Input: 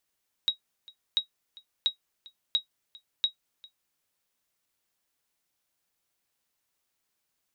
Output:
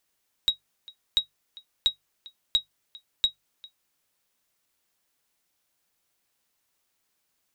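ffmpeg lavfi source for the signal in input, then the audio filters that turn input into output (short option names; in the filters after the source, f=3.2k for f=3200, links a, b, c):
-f lavfi -i "aevalsrc='0.168*(sin(2*PI*3810*mod(t,0.69))*exp(-6.91*mod(t,0.69)/0.11)+0.0668*sin(2*PI*3810*max(mod(t,0.69)-0.4,0))*exp(-6.91*max(mod(t,0.69)-0.4,0)/0.11))':d=3.45:s=44100"
-filter_complex "[0:a]bandreject=f=50:t=h:w=6,bandreject=f=100:t=h:w=6,bandreject=f=150:t=h:w=6,asplit=2[a][b];[b]aeval=exprs='clip(val(0),-1,0.0531)':c=same,volume=-4dB[c];[a][c]amix=inputs=2:normalize=0"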